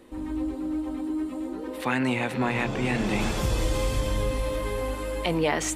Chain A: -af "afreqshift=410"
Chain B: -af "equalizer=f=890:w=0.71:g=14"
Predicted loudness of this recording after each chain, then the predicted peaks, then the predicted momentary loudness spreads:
-27.0 LUFS, -21.5 LUFS; -11.0 dBFS, -2.5 dBFS; 6 LU, 8 LU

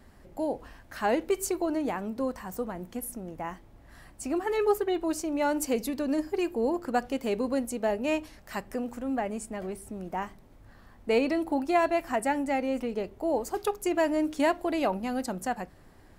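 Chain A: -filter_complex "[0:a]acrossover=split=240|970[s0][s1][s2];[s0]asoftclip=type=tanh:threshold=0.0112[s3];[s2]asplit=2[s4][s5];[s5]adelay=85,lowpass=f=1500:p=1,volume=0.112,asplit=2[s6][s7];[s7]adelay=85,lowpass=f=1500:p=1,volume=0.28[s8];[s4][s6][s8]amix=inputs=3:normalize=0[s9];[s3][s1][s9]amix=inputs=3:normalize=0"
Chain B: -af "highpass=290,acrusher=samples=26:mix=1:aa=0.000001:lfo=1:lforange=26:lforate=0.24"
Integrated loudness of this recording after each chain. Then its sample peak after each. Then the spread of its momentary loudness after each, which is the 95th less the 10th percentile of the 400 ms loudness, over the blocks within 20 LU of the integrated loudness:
-30.5 LUFS, -30.5 LUFS; -13.0 dBFS, -12.5 dBFS; 12 LU, 12 LU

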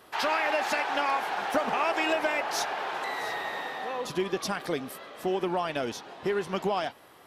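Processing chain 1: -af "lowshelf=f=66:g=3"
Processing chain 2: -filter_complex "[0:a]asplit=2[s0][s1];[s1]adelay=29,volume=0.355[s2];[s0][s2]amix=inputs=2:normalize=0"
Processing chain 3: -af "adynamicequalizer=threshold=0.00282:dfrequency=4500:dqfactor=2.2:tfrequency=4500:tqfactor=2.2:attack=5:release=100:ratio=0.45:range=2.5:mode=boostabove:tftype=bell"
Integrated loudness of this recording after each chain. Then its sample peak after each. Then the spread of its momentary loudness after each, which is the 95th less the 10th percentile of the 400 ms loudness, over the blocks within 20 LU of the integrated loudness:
-29.5 LUFS, -29.0 LUFS, -29.0 LUFS; -16.0 dBFS, -15.0 dBFS, -14.0 dBFS; 8 LU, 8 LU, 8 LU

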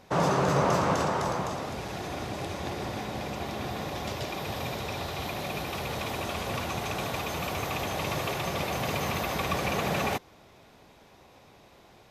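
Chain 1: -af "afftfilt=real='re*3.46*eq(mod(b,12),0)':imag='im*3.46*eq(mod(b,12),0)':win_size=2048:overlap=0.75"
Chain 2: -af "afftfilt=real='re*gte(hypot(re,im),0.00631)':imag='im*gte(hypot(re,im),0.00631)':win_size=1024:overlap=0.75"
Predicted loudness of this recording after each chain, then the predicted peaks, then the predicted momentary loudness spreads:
-33.5 LUFS, -31.0 LUFS; -16.5 dBFS, -13.0 dBFS; 10 LU, 10 LU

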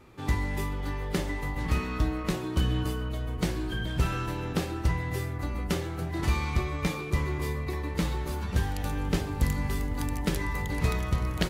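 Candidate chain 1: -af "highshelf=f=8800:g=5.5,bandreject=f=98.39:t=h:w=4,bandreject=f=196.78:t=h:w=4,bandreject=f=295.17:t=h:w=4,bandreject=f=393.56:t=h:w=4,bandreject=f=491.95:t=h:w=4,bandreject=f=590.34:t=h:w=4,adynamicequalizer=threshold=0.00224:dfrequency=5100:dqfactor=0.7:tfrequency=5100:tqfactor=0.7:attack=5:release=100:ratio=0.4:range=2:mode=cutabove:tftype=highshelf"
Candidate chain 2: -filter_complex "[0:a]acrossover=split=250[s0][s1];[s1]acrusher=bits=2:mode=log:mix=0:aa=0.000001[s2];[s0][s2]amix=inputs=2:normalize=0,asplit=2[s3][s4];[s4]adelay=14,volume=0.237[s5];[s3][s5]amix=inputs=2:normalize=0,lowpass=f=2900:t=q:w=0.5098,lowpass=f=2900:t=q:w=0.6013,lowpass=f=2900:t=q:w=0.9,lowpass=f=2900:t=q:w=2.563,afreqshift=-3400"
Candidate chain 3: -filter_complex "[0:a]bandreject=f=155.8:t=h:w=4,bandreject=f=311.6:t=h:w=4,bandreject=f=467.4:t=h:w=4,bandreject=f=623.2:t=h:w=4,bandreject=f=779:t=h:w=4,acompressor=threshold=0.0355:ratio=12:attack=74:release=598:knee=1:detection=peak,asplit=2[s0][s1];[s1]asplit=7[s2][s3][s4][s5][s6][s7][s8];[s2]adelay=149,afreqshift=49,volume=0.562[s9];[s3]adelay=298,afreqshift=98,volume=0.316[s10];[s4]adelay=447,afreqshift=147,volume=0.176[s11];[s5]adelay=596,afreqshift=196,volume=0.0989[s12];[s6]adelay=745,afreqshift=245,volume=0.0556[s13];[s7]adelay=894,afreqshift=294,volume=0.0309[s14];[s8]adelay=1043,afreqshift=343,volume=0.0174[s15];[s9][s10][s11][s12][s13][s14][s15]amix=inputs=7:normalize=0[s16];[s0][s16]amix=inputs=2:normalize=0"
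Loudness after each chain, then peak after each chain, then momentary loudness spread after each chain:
-31.0 LUFS, -25.0 LUFS, -31.5 LUFS; -12.0 dBFS, -10.5 dBFS, -14.0 dBFS; 5 LU, 5 LU, 1 LU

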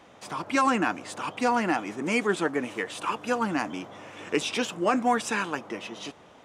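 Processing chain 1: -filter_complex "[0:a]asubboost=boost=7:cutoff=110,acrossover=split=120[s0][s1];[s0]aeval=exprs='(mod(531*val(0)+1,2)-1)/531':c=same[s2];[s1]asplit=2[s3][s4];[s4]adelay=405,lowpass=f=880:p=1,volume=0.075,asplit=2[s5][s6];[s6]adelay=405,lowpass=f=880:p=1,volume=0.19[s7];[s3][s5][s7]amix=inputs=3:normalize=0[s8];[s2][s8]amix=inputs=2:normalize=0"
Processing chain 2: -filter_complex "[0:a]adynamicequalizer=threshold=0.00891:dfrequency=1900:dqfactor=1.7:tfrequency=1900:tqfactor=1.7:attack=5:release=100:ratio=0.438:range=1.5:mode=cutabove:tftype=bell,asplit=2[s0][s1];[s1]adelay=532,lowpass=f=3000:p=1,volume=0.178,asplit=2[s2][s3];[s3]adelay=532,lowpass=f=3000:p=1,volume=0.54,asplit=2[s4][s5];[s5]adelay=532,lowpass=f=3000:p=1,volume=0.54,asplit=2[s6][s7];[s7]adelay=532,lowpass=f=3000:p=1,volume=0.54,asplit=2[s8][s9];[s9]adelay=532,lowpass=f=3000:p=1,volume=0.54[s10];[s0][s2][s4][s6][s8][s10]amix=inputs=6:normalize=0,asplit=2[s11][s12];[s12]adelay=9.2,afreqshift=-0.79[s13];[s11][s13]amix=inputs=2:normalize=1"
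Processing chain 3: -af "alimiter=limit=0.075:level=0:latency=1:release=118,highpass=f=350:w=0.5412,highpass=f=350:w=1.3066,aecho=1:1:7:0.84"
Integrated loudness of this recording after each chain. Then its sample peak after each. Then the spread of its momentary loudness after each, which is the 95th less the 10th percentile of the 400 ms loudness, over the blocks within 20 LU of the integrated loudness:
-28.5 LUFS, -31.0 LUFS, -33.0 LUFS; -12.5 dBFS, -14.0 dBFS, -17.5 dBFS; 13 LU, 13 LU, 7 LU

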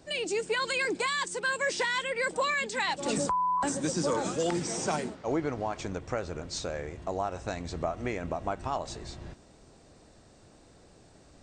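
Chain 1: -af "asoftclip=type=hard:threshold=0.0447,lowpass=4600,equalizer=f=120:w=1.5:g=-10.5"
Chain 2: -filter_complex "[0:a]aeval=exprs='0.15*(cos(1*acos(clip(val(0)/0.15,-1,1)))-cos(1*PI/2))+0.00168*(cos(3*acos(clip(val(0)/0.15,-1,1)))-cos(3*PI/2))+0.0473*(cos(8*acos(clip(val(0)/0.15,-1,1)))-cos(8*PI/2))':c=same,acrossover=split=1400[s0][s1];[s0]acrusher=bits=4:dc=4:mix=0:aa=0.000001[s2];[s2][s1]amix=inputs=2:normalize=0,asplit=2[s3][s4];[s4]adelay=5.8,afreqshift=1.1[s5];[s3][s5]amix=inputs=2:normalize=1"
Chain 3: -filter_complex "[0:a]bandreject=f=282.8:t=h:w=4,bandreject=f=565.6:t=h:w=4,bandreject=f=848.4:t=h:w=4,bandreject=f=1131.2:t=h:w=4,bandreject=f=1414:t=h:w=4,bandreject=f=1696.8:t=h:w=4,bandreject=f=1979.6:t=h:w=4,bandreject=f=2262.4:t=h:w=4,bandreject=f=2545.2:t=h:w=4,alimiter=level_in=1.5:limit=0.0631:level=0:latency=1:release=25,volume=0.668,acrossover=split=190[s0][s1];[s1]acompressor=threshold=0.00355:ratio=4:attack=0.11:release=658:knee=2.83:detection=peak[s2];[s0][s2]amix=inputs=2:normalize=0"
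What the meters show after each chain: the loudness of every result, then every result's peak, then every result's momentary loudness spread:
-33.0 LUFS, -31.0 LUFS, -47.5 LUFS; -24.0 dBFS, -10.5 dBFS, -30.5 dBFS; 8 LU, 9 LU, 13 LU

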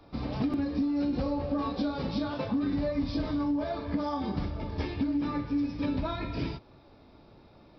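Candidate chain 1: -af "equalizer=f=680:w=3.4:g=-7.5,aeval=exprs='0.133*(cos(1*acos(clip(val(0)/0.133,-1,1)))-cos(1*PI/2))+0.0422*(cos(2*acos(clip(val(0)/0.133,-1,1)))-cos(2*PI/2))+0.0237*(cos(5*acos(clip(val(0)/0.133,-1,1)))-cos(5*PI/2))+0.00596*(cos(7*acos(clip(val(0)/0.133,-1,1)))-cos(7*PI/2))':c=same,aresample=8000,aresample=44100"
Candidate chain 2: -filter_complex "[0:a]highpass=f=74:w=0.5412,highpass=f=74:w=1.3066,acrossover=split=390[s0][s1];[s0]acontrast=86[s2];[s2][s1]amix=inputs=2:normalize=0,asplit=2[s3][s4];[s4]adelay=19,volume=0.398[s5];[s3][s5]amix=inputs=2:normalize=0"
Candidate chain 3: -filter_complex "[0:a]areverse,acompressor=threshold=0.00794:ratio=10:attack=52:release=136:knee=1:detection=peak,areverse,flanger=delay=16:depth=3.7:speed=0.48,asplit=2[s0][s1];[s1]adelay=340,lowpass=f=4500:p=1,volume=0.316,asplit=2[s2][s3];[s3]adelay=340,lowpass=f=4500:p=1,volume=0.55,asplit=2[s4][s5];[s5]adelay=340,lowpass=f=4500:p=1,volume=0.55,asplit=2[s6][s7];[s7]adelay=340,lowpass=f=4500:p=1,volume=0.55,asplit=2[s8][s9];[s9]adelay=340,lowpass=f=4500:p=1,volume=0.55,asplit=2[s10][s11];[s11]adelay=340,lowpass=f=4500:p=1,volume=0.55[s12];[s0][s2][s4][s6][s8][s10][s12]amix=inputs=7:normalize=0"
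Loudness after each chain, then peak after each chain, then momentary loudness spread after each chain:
-29.0 LUFS, -27.0 LUFS, -45.5 LUFS; -17.5 dBFS, -12.0 dBFS, -32.0 dBFS; 5 LU, 5 LU, 8 LU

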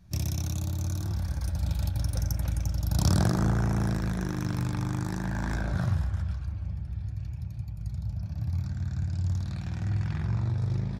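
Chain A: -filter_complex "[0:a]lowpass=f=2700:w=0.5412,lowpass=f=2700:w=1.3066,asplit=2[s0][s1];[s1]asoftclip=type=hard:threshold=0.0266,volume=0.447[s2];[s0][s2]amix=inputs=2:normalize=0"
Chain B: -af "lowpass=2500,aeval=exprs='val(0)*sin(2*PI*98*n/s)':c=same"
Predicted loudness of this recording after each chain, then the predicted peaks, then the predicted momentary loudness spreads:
-28.5 LUFS, -34.5 LUFS; -14.0 dBFS, -15.0 dBFS; 8 LU, 10 LU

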